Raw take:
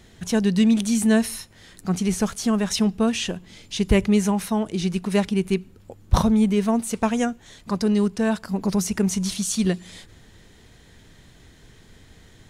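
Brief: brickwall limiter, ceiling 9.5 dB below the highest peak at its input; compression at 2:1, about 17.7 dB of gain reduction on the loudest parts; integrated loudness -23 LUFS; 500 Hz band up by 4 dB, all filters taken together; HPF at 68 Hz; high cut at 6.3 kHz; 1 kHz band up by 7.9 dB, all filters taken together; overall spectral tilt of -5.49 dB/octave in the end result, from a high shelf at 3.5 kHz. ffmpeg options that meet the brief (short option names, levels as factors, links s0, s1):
-af "highpass=68,lowpass=6300,equalizer=f=500:t=o:g=3,equalizer=f=1000:t=o:g=9,highshelf=f=3500:g=-3.5,acompressor=threshold=0.00562:ratio=2,volume=5.31,alimiter=limit=0.237:level=0:latency=1"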